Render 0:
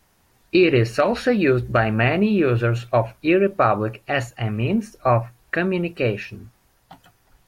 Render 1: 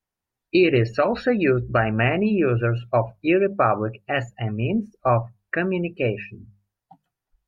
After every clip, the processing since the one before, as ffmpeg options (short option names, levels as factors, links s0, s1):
-af "afftdn=nr=24:nf=-33,bandreject=f=50:t=h:w=6,bandreject=f=100:t=h:w=6,bandreject=f=150:t=h:w=6,bandreject=f=200:t=h:w=6,volume=0.841"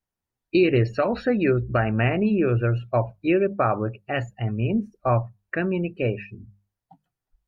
-af "lowshelf=f=380:g=5,volume=0.631"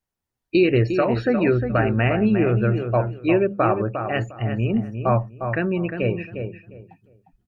-filter_complex "[0:a]asplit=2[s0][s1];[s1]adelay=354,lowpass=f=2100:p=1,volume=0.447,asplit=2[s2][s3];[s3]adelay=354,lowpass=f=2100:p=1,volume=0.22,asplit=2[s4][s5];[s5]adelay=354,lowpass=f=2100:p=1,volume=0.22[s6];[s0][s2][s4][s6]amix=inputs=4:normalize=0,volume=1.19"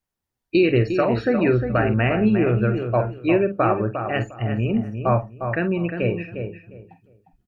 -filter_complex "[0:a]asplit=2[s0][s1];[s1]adelay=47,volume=0.282[s2];[s0][s2]amix=inputs=2:normalize=0"